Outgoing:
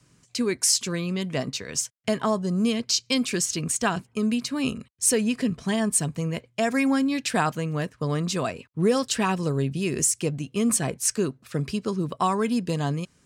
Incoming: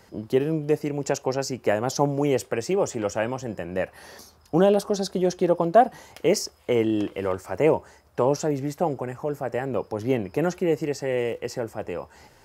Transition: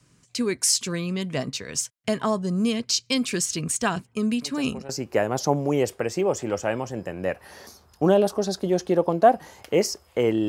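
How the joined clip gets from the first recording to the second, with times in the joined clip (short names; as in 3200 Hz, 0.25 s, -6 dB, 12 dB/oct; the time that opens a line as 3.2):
outgoing
4.42 add incoming from 0.94 s 0.47 s -15 dB
4.89 switch to incoming from 1.41 s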